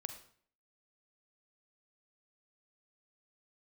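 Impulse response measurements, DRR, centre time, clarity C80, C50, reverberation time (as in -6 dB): 7.0 dB, 14 ms, 12.0 dB, 9.0 dB, 0.55 s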